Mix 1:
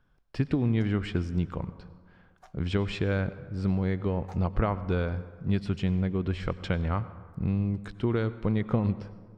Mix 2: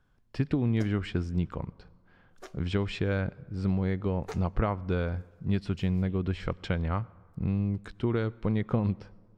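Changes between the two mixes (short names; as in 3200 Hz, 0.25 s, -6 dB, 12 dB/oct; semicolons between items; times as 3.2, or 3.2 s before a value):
speech: send -10.0 dB; background: remove ladder high-pass 720 Hz, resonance 70%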